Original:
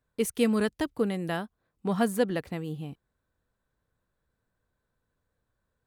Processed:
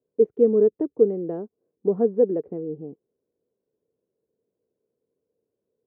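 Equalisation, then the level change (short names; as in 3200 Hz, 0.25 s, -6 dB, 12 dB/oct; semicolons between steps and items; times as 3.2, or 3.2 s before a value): HPF 210 Hz 12 dB/oct; synth low-pass 430 Hz, resonance Q 4.9; air absorption 120 m; 0.0 dB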